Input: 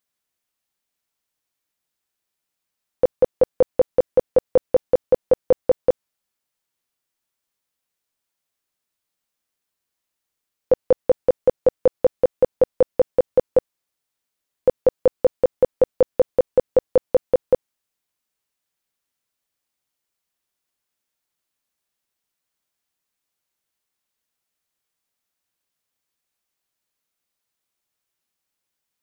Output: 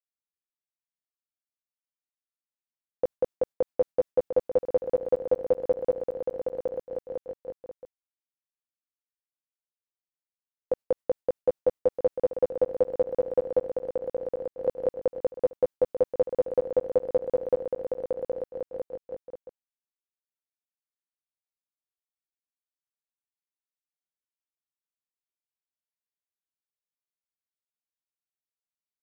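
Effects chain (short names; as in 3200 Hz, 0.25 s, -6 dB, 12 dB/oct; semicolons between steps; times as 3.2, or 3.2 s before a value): compressor, threshold -15 dBFS, peak gain reduction 5 dB; gate with hold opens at -15 dBFS; bouncing-ball echo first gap 0.77 s, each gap 0.65×, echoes 5; gain -6 dB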